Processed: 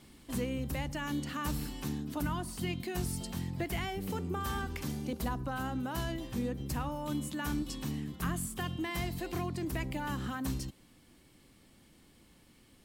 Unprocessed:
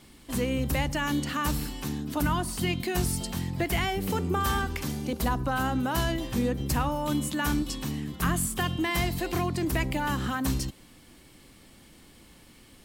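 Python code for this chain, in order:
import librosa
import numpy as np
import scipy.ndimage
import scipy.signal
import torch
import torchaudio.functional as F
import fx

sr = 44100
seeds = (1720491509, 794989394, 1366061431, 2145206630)

y = fx.low_shelf(x, sr, hz=270.0, db=6.0)
y = fx.rider(y, sr, range_db=10, speed_s=0.5)
y = fx.low_shelf(y, sr, hz=94.0, db=-6.5)
y = F.gain(torch.from_numpy(y), -9.0).numpy()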